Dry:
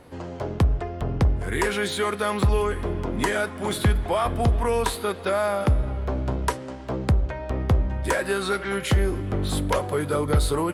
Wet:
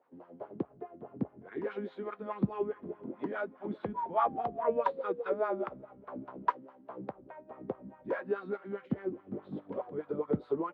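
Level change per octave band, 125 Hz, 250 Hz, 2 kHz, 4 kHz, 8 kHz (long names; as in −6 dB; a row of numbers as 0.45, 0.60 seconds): −21.5 dB, −9.5 dB, −17.0 dB, below −25 dB, below −40 dB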